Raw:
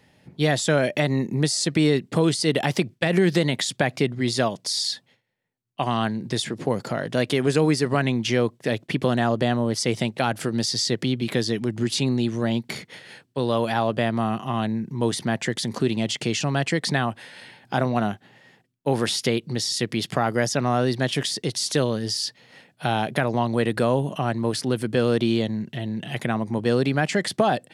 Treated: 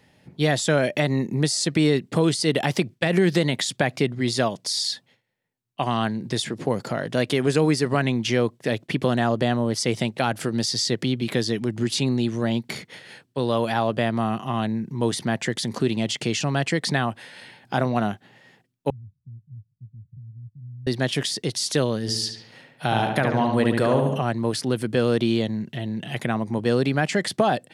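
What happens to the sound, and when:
18.9–20.87 inverse Chebyshev low-pass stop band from 570 Hz, stop band 80 dB
22.01–24.22 darkening echo 71 ms, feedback 57%, low-pass 3400 Hz, level -4 dB

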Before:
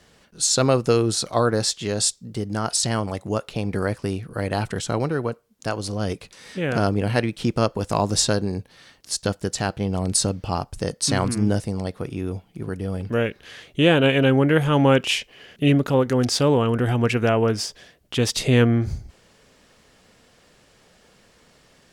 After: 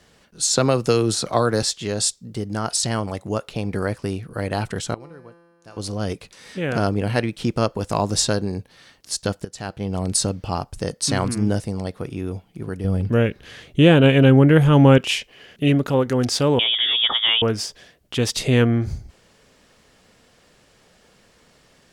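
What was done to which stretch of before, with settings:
0.53–1.63 three-band squash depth 70%
4.94–5.77 resonator 170 Hz, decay 1.8 s, mix 90%
9.45–9.99 fade in, from -15.5 dB
12.84–14.98 low shelf 290 Hz +9 dB
16.59–17.42 inverted band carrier 3500 Hz

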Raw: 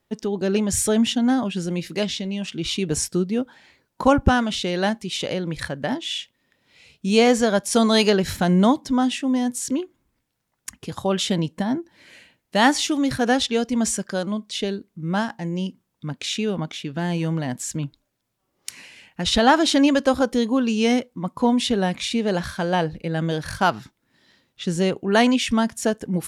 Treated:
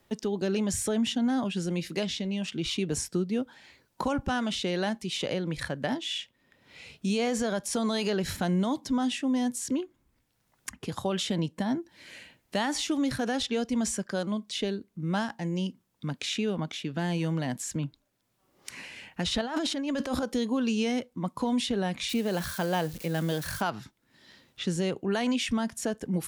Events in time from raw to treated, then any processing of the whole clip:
19.41–20.23 negative-ratio compressor -25 dBFS
22.09–23.62 switching spikes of -27.5 dBFS
whole clip: limiter -13.5 dBFS; three-band squash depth 40%; gain -5.5 dB

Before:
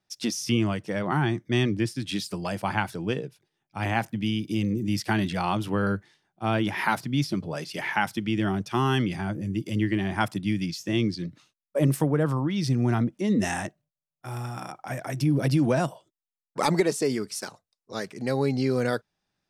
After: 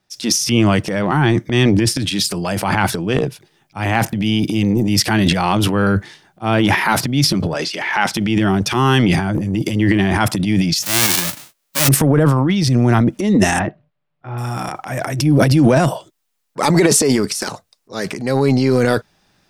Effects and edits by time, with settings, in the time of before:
7.54–8.14 three-band isolator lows -18 dB, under 210 Hz, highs -15 dB, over 7800 Hz
10.82–11.87 spectral whitening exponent 0.1
13.59–14.38 Gaussian blur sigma 2.9 samples
whole clip: transient shaper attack -5 dB, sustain +11 dB; maximiser +11 dB; gain -1 dB

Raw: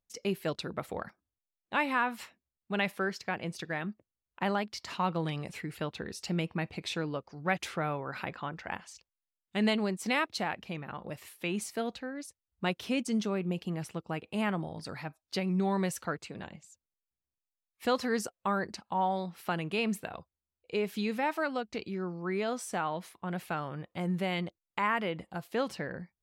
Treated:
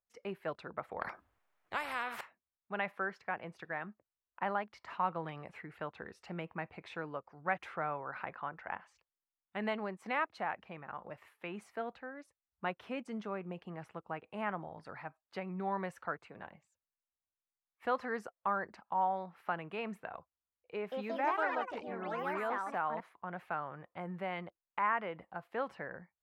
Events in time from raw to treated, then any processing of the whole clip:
1.01–2.21 spectral compressor 4:1
20.74–23.37 echoes that change speed 0.176 s, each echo +4 st, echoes 3
whole clip: three-band isolator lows -12 dB, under 600 Hz, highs -24 dB, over 2000 Hz

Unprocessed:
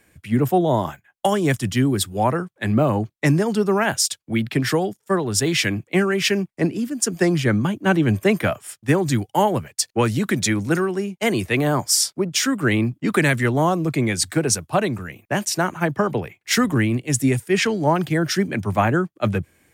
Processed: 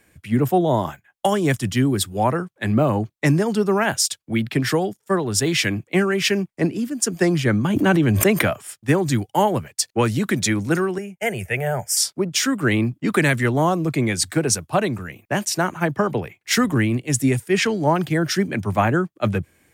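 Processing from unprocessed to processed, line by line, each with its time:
7.7–8.65 backwards sustainer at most 28 dB/s
10.98–11.97 fixed phaser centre 1100 Hz, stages 6

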